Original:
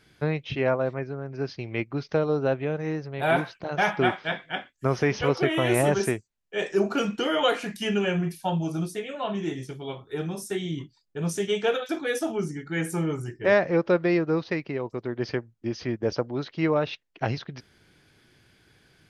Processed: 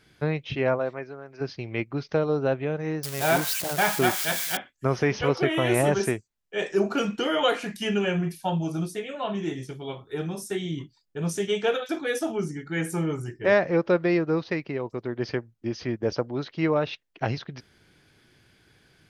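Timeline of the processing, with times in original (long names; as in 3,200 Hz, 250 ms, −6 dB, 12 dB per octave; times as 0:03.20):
0:00.78–0:01.40: high-pass filter 270 Hz → 990 Hz 6 dB per octave
0:03.03–0:04.57: spike at every zero crossing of −18.5 dBFS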